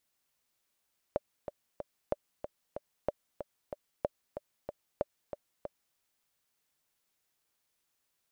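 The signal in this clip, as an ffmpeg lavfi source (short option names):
-f lavfi -i "aevalsrc='pow(10,(-16-9*gte(mod(t,3*60/187),60/187))/20)*sin(2*PI*586*mod(t,60/187))*exp(-6.91*mod(t,60/187)/0.03)':d=4.81:s=44100"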